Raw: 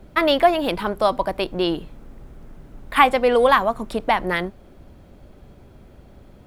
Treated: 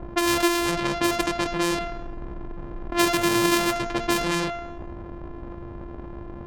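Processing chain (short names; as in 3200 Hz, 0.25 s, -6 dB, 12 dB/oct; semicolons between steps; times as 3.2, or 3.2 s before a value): sample sorter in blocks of 128 samples; low-pass opened by the level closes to 870 Hz, open at -15.5 dBFS; low shelf 360 Hz -4 dB; de-hum 229.9 Hz, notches 30; fast leveller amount 50%; gain -5.5 dB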